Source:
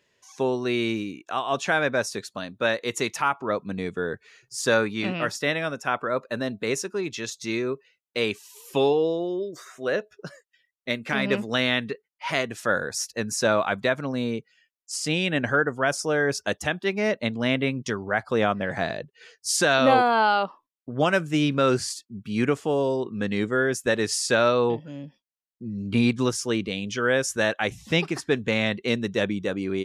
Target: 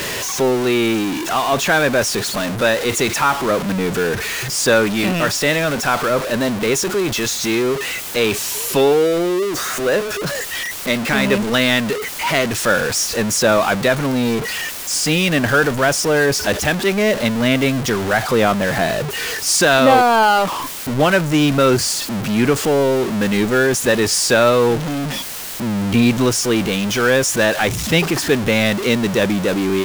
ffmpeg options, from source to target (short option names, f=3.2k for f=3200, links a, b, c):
-af "aeval=exprs='val(0)+0.5*0.0708*sgn(val(0))':c=same,volume=5dB"